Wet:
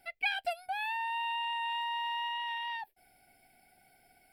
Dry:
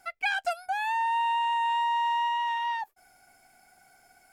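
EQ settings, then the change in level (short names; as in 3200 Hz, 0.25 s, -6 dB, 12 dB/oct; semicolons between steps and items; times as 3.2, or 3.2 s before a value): fixed phaser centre 2900 Hz, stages 4; 0.0 dB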